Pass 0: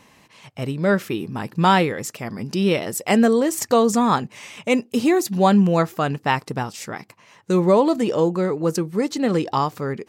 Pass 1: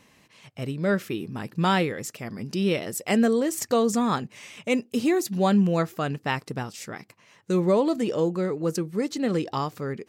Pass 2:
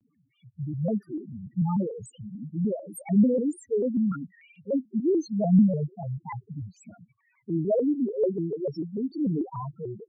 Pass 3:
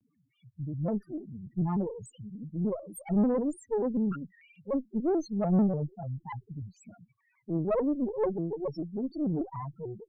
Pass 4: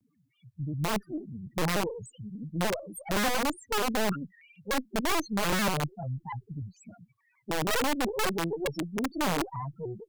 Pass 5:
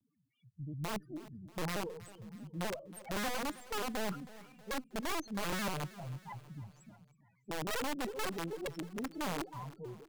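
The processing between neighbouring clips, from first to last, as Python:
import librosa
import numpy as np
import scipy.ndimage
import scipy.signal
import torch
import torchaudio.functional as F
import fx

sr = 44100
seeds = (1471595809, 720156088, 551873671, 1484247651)

y1 = fx.peak_eq(x, sr, hz=910.0, db=-5.0, octaves=0.73)
y1 = y1 * 10.0 ** (-4.5 / 20.0)
y2 = fx.spec_topn(y1, sr, count=2)
y2 = fx.rotary(y2, sr, hz=0.9)
y2 = fx.vibrato_shape(y2, sr, shape='square', rate_hz=3.4, depth_cents=160.0)
y2 = y2 * 10.0 ** (3.0 / 20.0)
y3 = fx.tube_stage(y2, sr, drive_db=20.0, bias=0.65)
y4 = (np.mod(10.0 ** (24.5 / 20.0) * y3 + 1.0, 2.0) - 1.0) / 10.0 ** (24.5 / 20.0)
y4 = y4 * 10.0 ** (2.0 / 20.0)
y5 = fx.echo_feedback(y4, sr, ms=319, feedback_pct=53, wet_db=-18.0)
y5 = y5 * 10.0 ** (-9.0 / 20.0)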